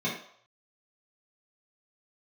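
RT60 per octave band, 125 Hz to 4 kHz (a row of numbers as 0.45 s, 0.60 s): 0.40 s, 0.35 s, 0.60 s, 0.70 s, 0.55 s, 0.55 s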